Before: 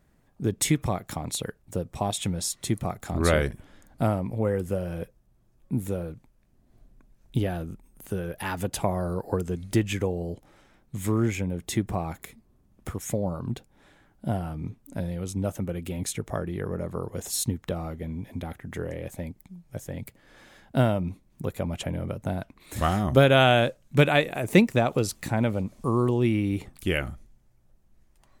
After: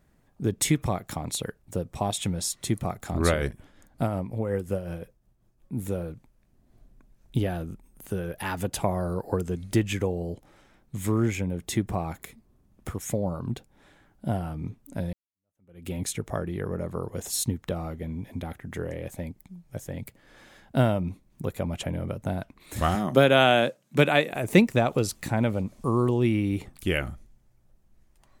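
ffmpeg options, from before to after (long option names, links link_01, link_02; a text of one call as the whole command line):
ffmpeg -i in.wav -filter_complex "[0:a]asettb=1/sr,asplit=3[link_01][link_02][link_03];[link_01]atrim=end=3.284[link_04];[link_02]atrim=start=3.28:end=5.79,asetpts=PTS-STARTPTS,afade=type=in:duration=0.004:curve=qsin,afade=type=out:start_time=2.506:duration=0.004:curve=qsin,tremolo=f=5.5:d=0.51[link_05];[link_03]atrim=start=5.786[link_06];[link_04][link_05]acrossfade=duration=0.004:curve1=hsin:curve2=qsin[link_07];[link_07][link_06]acrossfade=duration=0.004:curve1=qsin:curve2=hsin,asettb=1/sr,asplit=3[link_08][link_09][link_10];[link_08]atrim=end=22.954[link_11];[link_09]atrim=start=22.95:end=24.33,asetpts=PTS-STARTPTS,afade=type=in:duration=0.004:curve=qsin,afade=type=out:start_time=1.376:duration=0.004:curve=qsin,highpass=frequency=150:width=0.5412,highpass=frequency=150:width=1.3066[link_12];[link_10]atrim=start=24.326[link_13];[link_11][link_12]acrossfade=duration=0.004:curve1=hsin:curve2=qsin[link_14];[link_14][link_13]acrossfade=duration=0.004:curve1=qsin:curve2=hsin,asplit=2[link_15][link_16];[link_15]atrim=end=15.13,asetpts=PTS-STARTPTS,afade=type=out:start_time=15.126:duration=0.004:curve=hsin[link_17];[link_16]atrim=start=15.13,asetpts=PTS-STARTPTS,afade=type=in:duration=0.75:curve=exp[link_18];[link_17][link_18]concat=n=2:v=0:a=1" out.wav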